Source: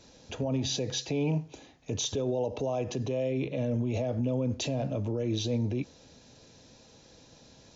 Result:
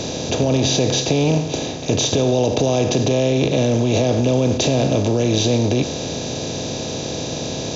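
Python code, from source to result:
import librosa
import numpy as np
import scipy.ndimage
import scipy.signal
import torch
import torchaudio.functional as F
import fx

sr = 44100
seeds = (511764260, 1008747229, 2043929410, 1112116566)

y = fx.bin_compress(x, sr, power=0.4)
y = y * librosa.db_to_amplitude(8.5)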